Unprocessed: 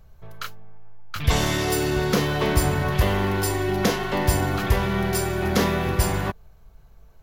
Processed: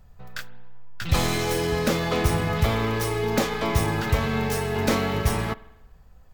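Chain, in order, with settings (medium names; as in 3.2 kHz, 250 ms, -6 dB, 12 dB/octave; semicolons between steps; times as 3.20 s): tracing distortion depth 0.1 ms; tape speed +14%; spring tank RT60 1 s, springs 50 ms, chirp 45 ms, DRR 18 dB; trim -1.5 dB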